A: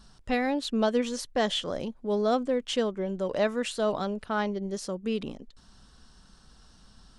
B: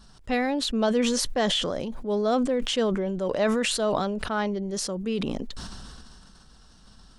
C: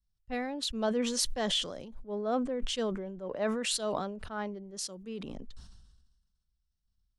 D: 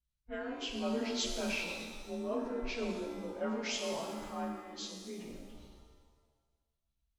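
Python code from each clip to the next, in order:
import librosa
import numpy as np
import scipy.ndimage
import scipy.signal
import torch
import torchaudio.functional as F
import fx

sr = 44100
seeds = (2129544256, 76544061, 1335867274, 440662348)

y1 = fx.sustainer(x, sr, db_per_s=22.0)
y1 = y1 * 10.0 ** (1.0 / 20.0)
y2 = fx.band_widen(y1, sr, depth_pct=100)
y2 = y2 * 10.0 ** (-9.0 / 20.0)
y3 = fx.partial_stretch(y2, sr, pct=90)
y3 = fx.rev_shimmer(y3, sr, seeds[0], rt60_s=1.4, semitones=7, shimmer_db=-8, drr_db=2.0)
y3 = y3 * 10.0 ** (-5.0 / 20.0)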